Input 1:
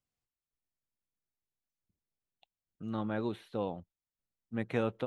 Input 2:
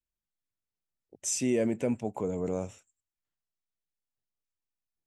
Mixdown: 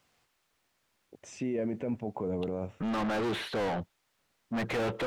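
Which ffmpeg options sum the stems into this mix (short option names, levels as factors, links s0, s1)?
-filter_complex "[0:a]lowshelf=f=110:g=9,asplit=2[s0][s1];[s1]highpass=f=720:p=1,volume=100,asoftclip=type=tanh:threshold=0.15[s2];[s0][s2]amix=inputs=2:normalize=0,lowpass=f=2600:p=1,volume=0.501,volume=0.447[s3];[1:a]lowpass=2100,alimiter=level_in=1.33:limit=0.0631:level=0:latency=1:release=28,volume=0.75,volume=1.19[s4];[s3][s4]amix=inputs=2:normalize=0"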